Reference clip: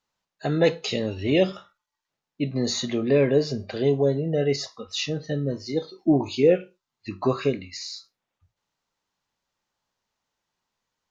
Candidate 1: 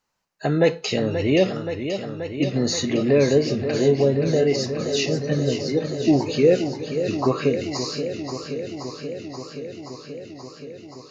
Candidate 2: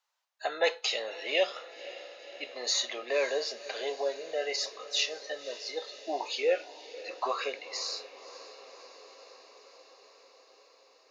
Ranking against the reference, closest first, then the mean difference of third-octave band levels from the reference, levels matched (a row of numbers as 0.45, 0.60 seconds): 1, 2; 7.0, 13.0 decibels